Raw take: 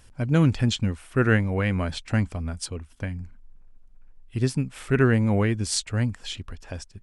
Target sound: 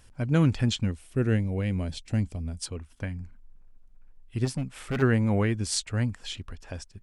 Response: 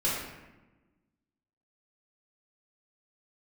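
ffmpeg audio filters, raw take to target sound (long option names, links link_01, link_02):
-filter_complex "[0:a]asettb=1/sr,asplit=3[link_01][link_02][link_03];[link_01]atrim=end=0.914[link_04];[link_02]atrim=start=0.91:end=2.62,asetpts=PTS-STARTPTS,afade=type=in:duration=0.004:curve=qsin,afade=type=out:start_time=1.706:duration=0.004:curve=qsin,equalizer=frequency=1300:width=0.77:gain=-13[link_05];[link_03]atrim=start=2.616[link_06];[link_04][link_05]acrossfade=duration=0.004:curve1=hsin:curve2=qsin[link_07];[link_07][link_06]acrossfade=duration=0.004:curve1=qsin:curve2=hsin,asplit=3[link_08][link_09][link_10];[link_08]afade=type=out:start_time=4.44:duration=0.02[link_11];[link_09]volume=22.5dB,asoftclip=hard,volume=-22.5dB,afade=type=in:start_time=4.44:duration=0.02,afade=type=out:start_time=5.01:duration=0.02[link_12];[link_10]afade=type=in:start_time=5.01:duration=0.02[link_13];[link_11][link_12][link_13]amix=inputs=3:normalize=0,volume=-2.5dB"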